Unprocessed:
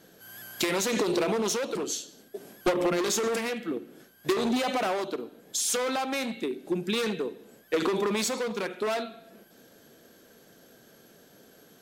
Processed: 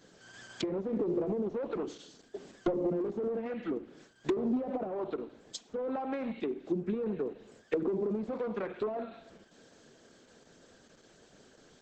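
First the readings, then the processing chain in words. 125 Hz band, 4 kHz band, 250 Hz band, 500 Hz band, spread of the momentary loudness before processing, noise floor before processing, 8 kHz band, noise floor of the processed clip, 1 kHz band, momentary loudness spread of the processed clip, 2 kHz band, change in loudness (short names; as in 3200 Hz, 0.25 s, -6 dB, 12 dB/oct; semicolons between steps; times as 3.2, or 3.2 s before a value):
-2.5 dB, -17.0 dB, -3.0 dB, -4.5 dB, 10 LU, -57 dBFS, -23.0 dB, -62 dBFS, -10.0 dB, 16 LU, -15.0 dB, -6.0 dB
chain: treble ducked by the level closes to 480 Hz, closed at -24 dBFS; gain -2.5 dB; Opus 10 kbps 48000 Hz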